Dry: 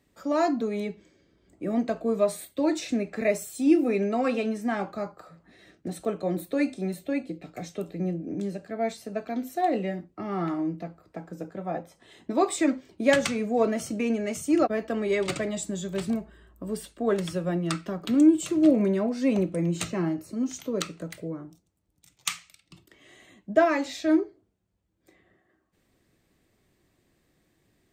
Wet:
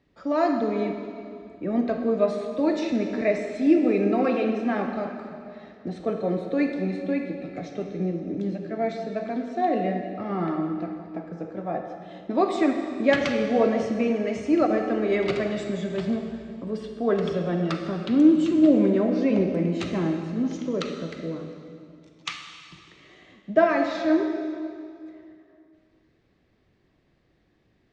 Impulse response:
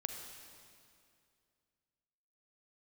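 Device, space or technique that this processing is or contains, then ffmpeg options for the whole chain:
swimming-pool hall: -filter_complex "[1:a]atrim=start_sample=2205[a];[0:a][a]afir=irnorm=-1:irlink=0,lowpass=f=5.5k:w=0.5412,lowpass=f=5.5k:w=1.3066,highshelf=f=3.9k:g=-6.5,volume=3dB"

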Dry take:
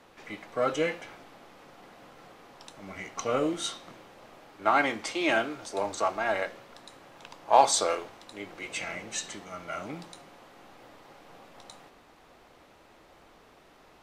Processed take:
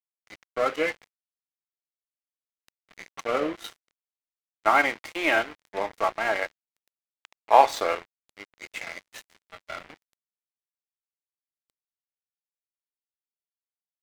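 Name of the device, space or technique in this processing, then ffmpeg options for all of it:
pocket radio on a weak battery: -af "highpass=300,lowpass=3.6k,aeval=exprs='sgn(val(0))*max(abs(val(0))-0.0133,0)':c=same,equalizer=f=2k:t=o:w=0.49:g=5,volume=4dB"

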